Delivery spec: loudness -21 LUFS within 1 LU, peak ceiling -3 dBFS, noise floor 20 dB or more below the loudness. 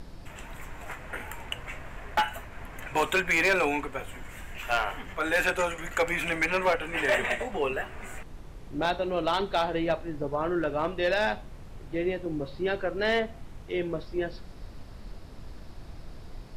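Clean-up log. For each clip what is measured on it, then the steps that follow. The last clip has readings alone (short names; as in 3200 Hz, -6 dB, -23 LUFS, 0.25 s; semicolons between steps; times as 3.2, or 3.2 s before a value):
clipped 0.5%; flat tops at -18.0 dBFS; noise floor -45 dBFS; noise floor target -49 dBFS; loudness -28.5 LUFS; peak -18.0 dBFS; loudness target -21.0 LUFS
-> clip repair -18 dBFS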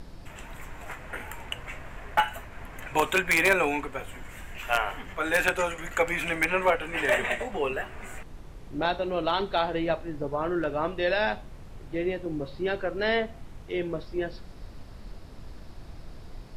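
clipped 0.0%; noise floor -45 dBFS; noise floor target -48 dBFS
-> noise print and reduce 6 dB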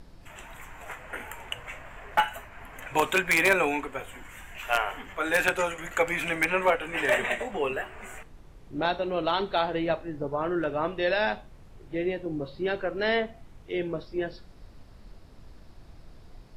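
noise floor -51 dBFS; loudness -28.0 LUFS; peak -9.0 dBFS; loudness target -21.0 LUFS
-> gain +7 dB; limiter -3 dBFS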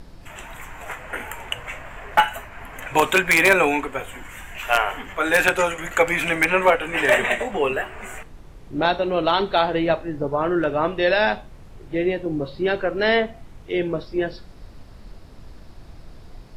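loudness -21.0 LUFS; peak -3.0 dBFS; noise floor -44 dBFS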